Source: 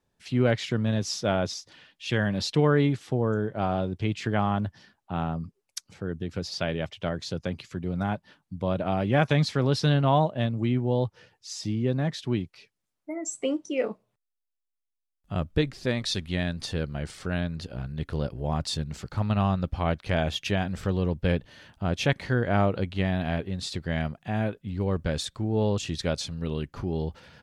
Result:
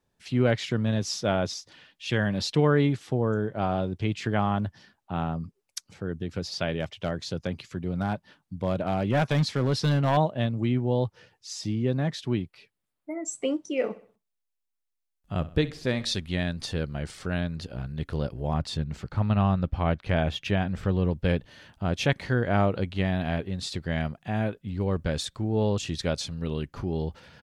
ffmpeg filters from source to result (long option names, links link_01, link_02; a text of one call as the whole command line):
ffmpeg -i in.wav -filter_complex "[0:a]asettb=1/sr,asplit=3[link_01][link_02][link_03];[link_01]atrim=end=6.714[link_04];[link_02]atrim=start=6.71:end=10.17,asetpts=PTS-STARTPTS,afade=type=in:duration=0.004:curve=qsin,afade=type=out:start_time=3.456:duration=0.004:curve=qsin,asoftclip=type=hard:threshold=-17.5dB[link_05];[link_03]atrim=start=10.166[link_06];[link_04][link_05]acrossfade=duration=0.004:curve1=hsin:curve2=qsin[link_07];[link_07][link_06]acrossfade=duration=0.004:curve1=qsin:curve2=hsin,asettb=1/sr,asplit=3[link_08][link_09][link_10];[link_08]atrim=end=12.324[link_11];[link_09]atrim=start=12.32:end=13.28,asetpts=PTS-STARTPTS,afade=type=in:duration=0.004:curve=qsin,afade=type=out:start_time=0.956:duration=0.004:curve=qsin,equalizer=frequency=6000:width_type=o:width=0.65:gain=-7.5[link_12];[link_10]atrim=start=13.276[link_13];[link_11][link_12]acrossfade=duration=0.004:curve1=hsin:curve2=qsin[link_14];[link_14][link_13]acrossfade=duration=0.004:curve1=qsin:curve2=hsin,asplit=3[link_15][link_16][link_17];[link_15]afade=type=out:start_time=13.79:duration=0.02[link_18];[link_16]aecho=1:1:64|128|192|256:0.141|0.0593|0.0249|0.0105,afade=type=in:start_time=13.79:duration=0.02,afade=type=out:start_time=16.14:duration=0.02[link_19];[link_17]afade=type=in:start_time=16.14:duration=0.02[link_20];[link_18][link_19][link_20]amix=inputs=3:normalize=0,asettb=1/sr,asplit=3[link_21][link_22][link_23];[link_21]atrim=end=18.544[link_24];[link_22]atrim=start=18.54:end=21.11,asetpts=PTS-STARTPTS,afade=type=in:duration=0.004:curve=qsin,afade=type=out:start_time=2.566:duration=0.004:curve=qsin,bass=frequency=250:gain=2,treble=frequency=4000:gain=-8[link_25];[link_23]atrim=start=21.106[link_26];[link_24][link_25]acrossfade=duration=0.004:curve1=hsin:curve2=qsin[link_27];[link_27][link_26]acrossfade=duration=0.004:curve1=qsin:curve2=hsin" out.wav